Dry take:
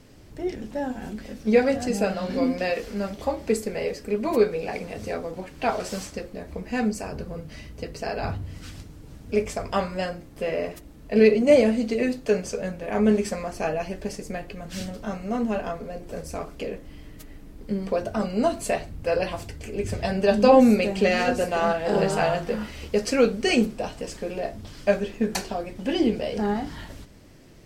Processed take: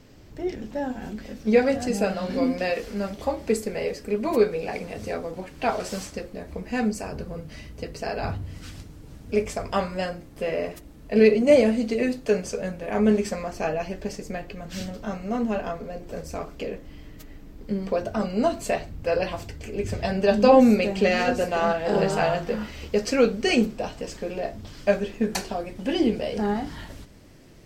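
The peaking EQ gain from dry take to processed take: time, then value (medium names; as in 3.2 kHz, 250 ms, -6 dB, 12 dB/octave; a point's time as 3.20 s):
peaking EQ 9.9 kHz 0.32 oct
1.03 s -12 dB
1.87 s -0.5 dB
12.88 s -0.5 dB
13.46 s -10 dB
24.34 s -10 dB
25.43 s -0.5 dB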